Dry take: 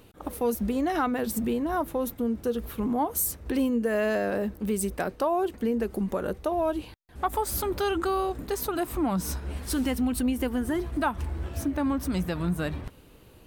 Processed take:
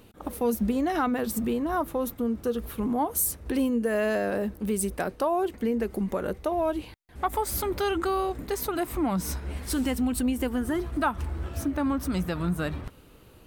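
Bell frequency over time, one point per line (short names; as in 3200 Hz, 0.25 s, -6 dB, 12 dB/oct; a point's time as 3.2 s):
bell +5 dB 0.24 oct
220 Hz
from 1.18 s 1200 Hz
from 2.62 s 10000 Hz
from 5.42 s 2100 Hz
from 9.72 s 7800 Hz
from 10.53 s 1300 Hz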